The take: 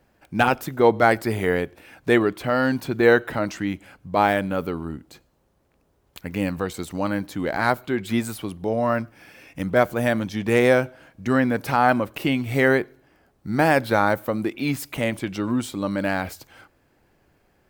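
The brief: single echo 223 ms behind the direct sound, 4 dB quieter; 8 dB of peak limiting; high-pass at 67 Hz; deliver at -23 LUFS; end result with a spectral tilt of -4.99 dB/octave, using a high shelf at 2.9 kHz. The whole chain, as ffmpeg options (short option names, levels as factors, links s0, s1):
-af "highpass=67,highshelf=f=2900:g=7,alimiter=limit=0.335:level=0:latency=1,aecho=1:1:223:0.631"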